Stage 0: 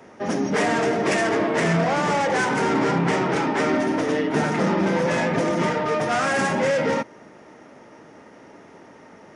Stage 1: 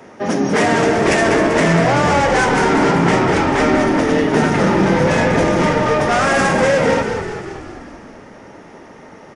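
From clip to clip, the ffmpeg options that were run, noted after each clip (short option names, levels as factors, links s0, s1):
-filter_complex "[0:a]asplit=9[s0][s1][s2][s3][s4][s5][s6][s7][s8];[s1]adelay=194,afreqshift=-43,volume=0.422[s9];[s2]adelay=388,afreqshift=-86,volume=0.26[s10];[s3]adelay=582,afreqshift=-129,volume=0.162[s11];[s4]adelay=776,afreqshift=-172,volume=0.1[s12];[s5]adelay=970,afreqshift=-215,volume=0.0624[s13];[s6]adelay=1164,afreqshift=-258,volume=0.0385[s14];[s7]adelay=1358,afreqshift=-301,volume=0.024[s15];[s8]adelay=1552,afreqshift=-344,volume=0.0148[s16];[s0][s9][s10][s11][s12][s13][s14][s15][s16]amix=inputs=9:normalize=0,volume=2"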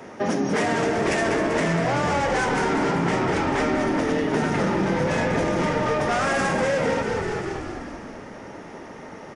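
-af "acompressor=threshold=0.0794:ratio=3"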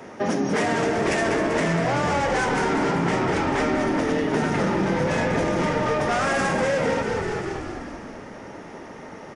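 -af anull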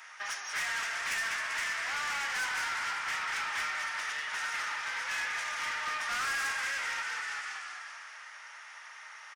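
-filter_complex "[0:a]highpass=f=1300:w=0.5412,highpass=f=1300:w=1.3066,asoftclip=type=tanh:threshold=0.0355,asplit=2[s0][s1];[s1]adelay=340,highpass=300,lowpass=3400,asoftclip=type=hard:threshold=0.0119,volume=0.178[s2];[s0][s2]amix=inputs=2:normalize=0"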